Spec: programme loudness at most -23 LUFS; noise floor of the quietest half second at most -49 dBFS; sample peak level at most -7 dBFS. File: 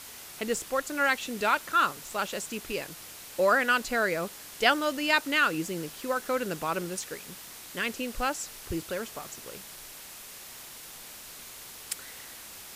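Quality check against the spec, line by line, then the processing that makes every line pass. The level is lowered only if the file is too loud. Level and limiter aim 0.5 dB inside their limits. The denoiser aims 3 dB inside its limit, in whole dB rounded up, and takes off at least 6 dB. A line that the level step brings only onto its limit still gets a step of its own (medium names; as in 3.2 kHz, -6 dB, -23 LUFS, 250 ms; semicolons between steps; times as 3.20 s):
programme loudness -29.0 LUFS: pass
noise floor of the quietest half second -45 dBFS: fail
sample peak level -7.5 dBFS: pass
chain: noise reduction 7 dB, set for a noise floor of -45 dBFS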